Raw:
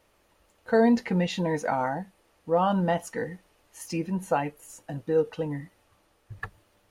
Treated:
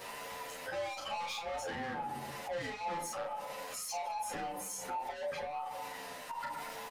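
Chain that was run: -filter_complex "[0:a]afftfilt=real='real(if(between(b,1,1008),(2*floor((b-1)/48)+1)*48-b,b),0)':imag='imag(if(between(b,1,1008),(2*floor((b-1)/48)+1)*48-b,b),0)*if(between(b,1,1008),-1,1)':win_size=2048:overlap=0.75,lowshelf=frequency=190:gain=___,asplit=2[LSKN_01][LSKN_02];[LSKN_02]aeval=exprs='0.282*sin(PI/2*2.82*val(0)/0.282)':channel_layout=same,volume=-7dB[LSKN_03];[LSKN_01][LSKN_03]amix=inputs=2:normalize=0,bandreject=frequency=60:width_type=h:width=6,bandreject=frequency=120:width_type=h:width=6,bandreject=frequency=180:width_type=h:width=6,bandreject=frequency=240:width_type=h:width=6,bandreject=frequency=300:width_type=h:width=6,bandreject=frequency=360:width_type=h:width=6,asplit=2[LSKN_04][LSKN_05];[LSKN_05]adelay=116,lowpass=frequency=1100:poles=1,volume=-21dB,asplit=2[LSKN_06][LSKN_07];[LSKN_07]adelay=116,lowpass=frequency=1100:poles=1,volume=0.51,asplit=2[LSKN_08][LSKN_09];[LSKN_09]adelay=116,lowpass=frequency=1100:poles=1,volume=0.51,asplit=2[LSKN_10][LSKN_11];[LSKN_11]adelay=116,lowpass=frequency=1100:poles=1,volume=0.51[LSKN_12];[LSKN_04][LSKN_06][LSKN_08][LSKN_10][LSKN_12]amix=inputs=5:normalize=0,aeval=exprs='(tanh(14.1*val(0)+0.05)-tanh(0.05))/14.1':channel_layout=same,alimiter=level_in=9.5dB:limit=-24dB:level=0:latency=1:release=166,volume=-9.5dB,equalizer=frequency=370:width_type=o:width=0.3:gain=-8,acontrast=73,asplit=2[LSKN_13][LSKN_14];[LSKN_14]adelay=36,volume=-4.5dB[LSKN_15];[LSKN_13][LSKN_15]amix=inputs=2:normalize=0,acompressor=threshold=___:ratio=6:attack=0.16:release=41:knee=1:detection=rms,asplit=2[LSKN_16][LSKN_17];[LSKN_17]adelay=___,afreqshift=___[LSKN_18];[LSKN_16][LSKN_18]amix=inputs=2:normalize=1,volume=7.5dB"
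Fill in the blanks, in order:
-11, -41dB, 10.2, -0.91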